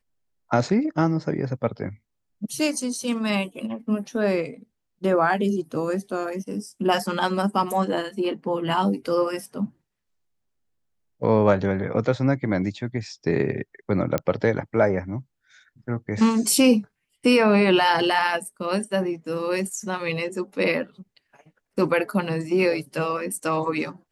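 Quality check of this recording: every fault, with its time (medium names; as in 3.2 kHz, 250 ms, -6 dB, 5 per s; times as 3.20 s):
14.18 s: pop -10 dBFS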